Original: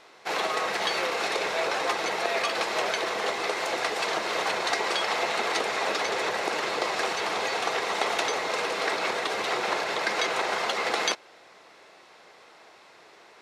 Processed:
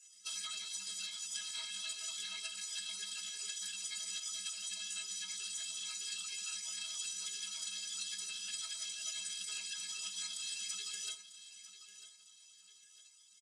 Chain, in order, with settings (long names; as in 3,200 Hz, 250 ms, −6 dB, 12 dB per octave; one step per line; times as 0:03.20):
speech leveller
gate on every frequency bin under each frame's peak −20 dB weak
on a send at −8.5 dB: convolution reverb RT60 0.50 s, pre-delay 5 ms
on the sum: downward compressor, threshold −43 dBFS, peak gain reduction 8.5 dB
stiff-string resonator 250 Hz, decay 0.24 s, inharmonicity 0.03
repeating echo 947 ms, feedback 37%, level −14 dB
phase-vocoder pitch shift with formants kept −4.5 semitones
meter weighting curve ITU-R 468
level +7.5 dB